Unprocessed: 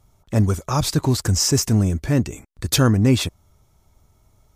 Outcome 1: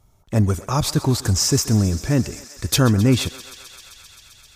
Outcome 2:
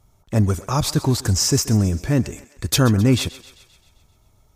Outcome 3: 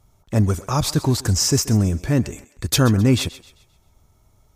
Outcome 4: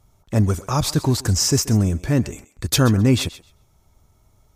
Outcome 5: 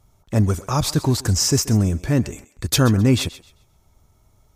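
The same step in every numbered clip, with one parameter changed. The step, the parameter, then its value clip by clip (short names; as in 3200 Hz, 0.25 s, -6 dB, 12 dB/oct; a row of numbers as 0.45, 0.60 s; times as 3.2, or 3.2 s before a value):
thinning echo, feedback: 87, 59, 39, 16, 26%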